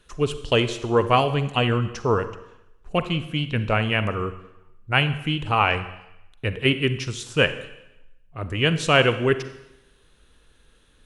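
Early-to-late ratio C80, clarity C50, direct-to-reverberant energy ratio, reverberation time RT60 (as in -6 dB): 14.5 dB, 12.0 dB, 11.0 dB, 0.85 s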